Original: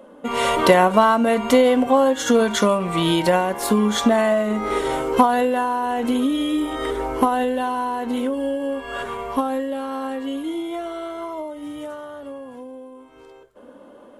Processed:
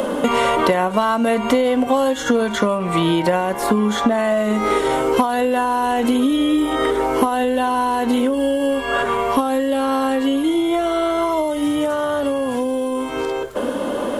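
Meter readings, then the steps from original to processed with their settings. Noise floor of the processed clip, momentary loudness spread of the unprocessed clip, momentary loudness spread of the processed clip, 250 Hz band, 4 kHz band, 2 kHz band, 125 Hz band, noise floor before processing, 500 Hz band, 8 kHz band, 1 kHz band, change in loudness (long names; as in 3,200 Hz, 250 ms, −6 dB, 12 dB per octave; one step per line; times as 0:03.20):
−24 dBFS, 16 LU, 4 LU, +3.5 dB, +1.5 dB, +2.5 dB, +1.0 dB, −46 dBFS, +2.0 dB, 0.0 dB, +2.0 dB, +1.5 dB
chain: multiband upward and downward compressor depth 100%
level +1.5 dB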